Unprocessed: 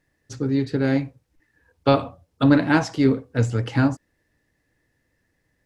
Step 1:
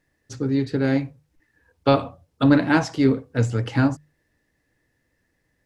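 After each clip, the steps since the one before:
mains-hum notches 50/100/150 Hz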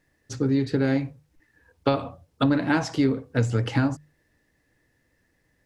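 downward compressor 6 to 1, threshold −20 dBFS, peak gain reduction 9.5 dB
level +2 dB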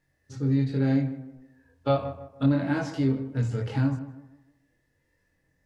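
multi-voice chorus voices 4, 0.71 Hz, delay 22 ms, depth 1.1 ms
harmonic and percussive parts rebalanced percussive −11 dB
tape delay 156 ms, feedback 42%, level −11 dB, low-pass 1,600 Hz
level +1 dB

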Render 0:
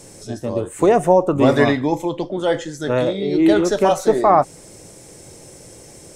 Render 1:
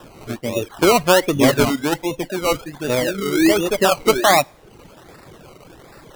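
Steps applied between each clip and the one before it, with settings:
sample-and-hold swept by an LFO 20×, swing 60% 1.3 Hz
coupled-rooms reverb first 0.61 s, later 2.8 s, from −17 dB, DRR 16 dB
reverb reduction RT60 0.65 s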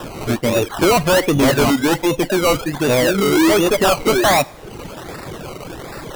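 in parallel at −0.5 dB: downward compressor, threshold −25 dBFS, peak gain reduction 15.5 dB
on the sum: soft clipping −17 dBFS, distortion −7 dB
level +6.5 dB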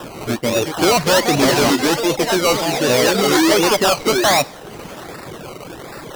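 low-shelf EQ 77 Hz −10.5 dB
delay with pitch and tempo change per echo 452 ms, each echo +5 semitones, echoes 2, each echo −6 dB
dynamic equaliser 5,100 Hz, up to +6 dB, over −34 dBFS, Q 1.3
level −1 dB

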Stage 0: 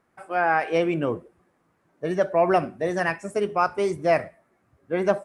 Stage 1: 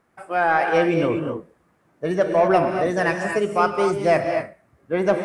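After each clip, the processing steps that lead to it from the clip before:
in parallel at −7 dB: soft clipping −18.5 dBFS, distortion −12 dB
on the sum: reverb whose tail is shaped and stops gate 270 ms rising, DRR 4 dB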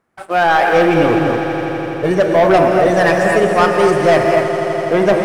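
leveller curve on the samples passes 2
echo that builds up and dies away 83 ms, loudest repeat 5, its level −15 dB
level +1 dB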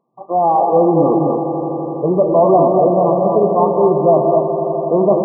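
brick-wall band-pass 120–1,200 Hz

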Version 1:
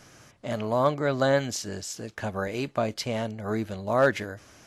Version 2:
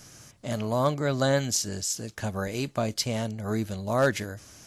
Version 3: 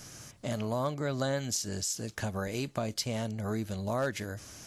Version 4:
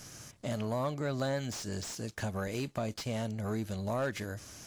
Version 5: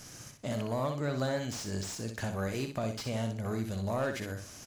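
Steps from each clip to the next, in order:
bass and treble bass +6 dB, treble +11 dB; level −2.5 dB
downward compressor 2.5 to 1, threshold −34 dBFS, peak gain reduction 11 dB; level +1.5 dB
leveller curve on the samples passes 1; slew-rate limiting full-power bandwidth 100 Hz; level −4.5 dB
repeating echo 62 ms, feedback 24%, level −6.5 dB

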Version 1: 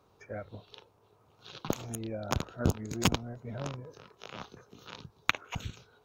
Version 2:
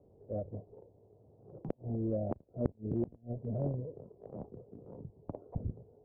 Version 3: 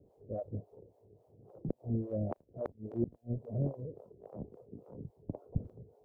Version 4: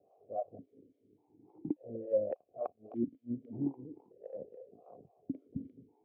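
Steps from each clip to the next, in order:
Butterworth low-pass 650 Hz 36 dB per octave; transient designer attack −4 dB, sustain 0 dB; gate with flip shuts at −27 dBFS, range −28 dB; level +5 dB
two-band tremolo in antiphase 3.6 Hz, depth 100%, crossover 500 Hz; level +4.5 dB
formant filter that steps through the vowels 1.7 Hz; level +10.5 dB

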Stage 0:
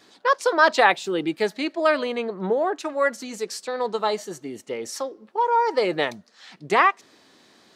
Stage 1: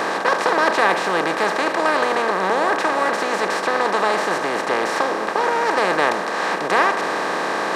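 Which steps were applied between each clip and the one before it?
compressor on every frequency bin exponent 0.2
level −6.5 dB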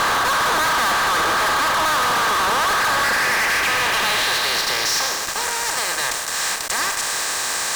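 band-pass filter sweep 1,300 Hz → 8,000 Hz, 0:02.72–0:05.45
fuzz pedal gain 46 dB, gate −48 dBFS
level −4.5 dB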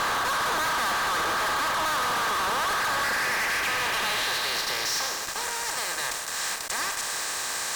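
level −7 dB
MP3 96 kbit/s 44,100 Hz

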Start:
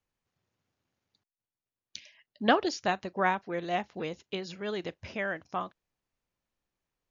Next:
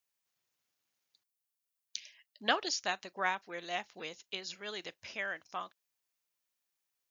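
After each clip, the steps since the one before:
spectral tilt +4 dB per octave
level −6 dB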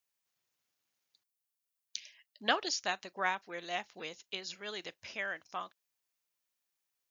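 no processing that can be heard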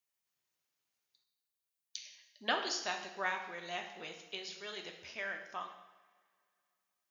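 coupled-rooms reverb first 0.87 s, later 2.7 s, from −20 dB, DRR 3 dB
level −4 dB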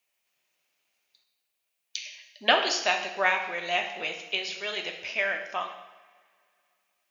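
graphic EQ with 15 bands 100 Hz −12 dB, 630 Hz +7 dB, 2,500 Hz +10 dB
level +7.5 dB

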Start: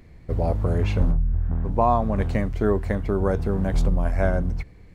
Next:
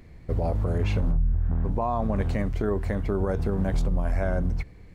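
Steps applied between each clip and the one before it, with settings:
brickwall limiter −17 dBFS, peak gain reduction 9 dB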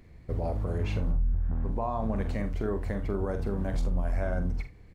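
ambience of single reflections 45 ms −9 dB, 77 ms −17 dB
level −5 dB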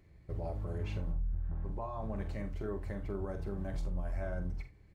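notch comb filter 240 Hz
level −7 dB

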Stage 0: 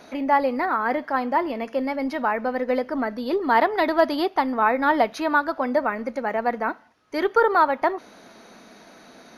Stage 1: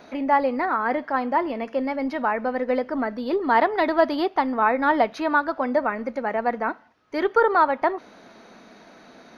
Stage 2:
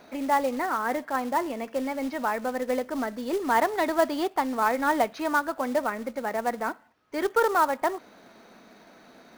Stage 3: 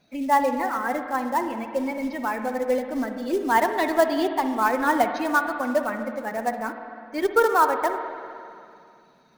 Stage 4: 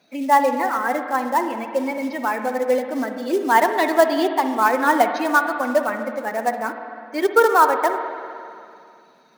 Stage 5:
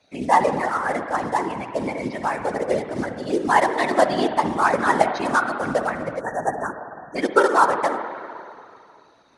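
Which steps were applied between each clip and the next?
parametric band 11,000 Hz −12 dB 1.3 octaves
floating-point word with a short mantissa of 2 bits; level −4 dB
spectral dynamics exaggerated over time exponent 1.5; convolution reverb RT60 2.5 s, pre-delay 49 ms, DRR 6.5 dB; level +5 dB
high-pass filter 250 Hz 12 dB per octave; level +4.5 dB
elliptic low-pass filter 10,000 Hz, stop band 60 dB; random phases in short frames; time-frequency box erased 0:06.20–0:07.16, 1,900–5,600 Hz; level −1 dB

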